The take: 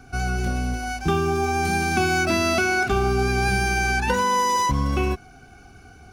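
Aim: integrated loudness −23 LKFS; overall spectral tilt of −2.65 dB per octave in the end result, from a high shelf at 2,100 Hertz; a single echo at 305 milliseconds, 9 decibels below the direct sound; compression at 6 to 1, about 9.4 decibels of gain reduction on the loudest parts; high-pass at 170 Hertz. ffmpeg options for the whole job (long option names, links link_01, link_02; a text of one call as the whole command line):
ffmpeg -i in.wav -af "highpass=170,highshelf=frequency=2100:gain=7.5,acompressor=threshold=-26dB:ratio=6,aecho=1:1:305:0.355,volume=5dB" out.wav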